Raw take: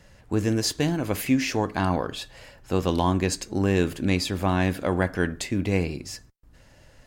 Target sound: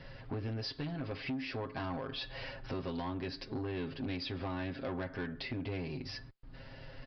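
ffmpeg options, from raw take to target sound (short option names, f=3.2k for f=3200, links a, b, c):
-af "aecho=1:1:7.5:0.76,acompressor=threshold=-36dB:ratio=5,aresample=11025,asoftclip=type=tanh:threshold=-34dB,aresample=44100,volume=2dB"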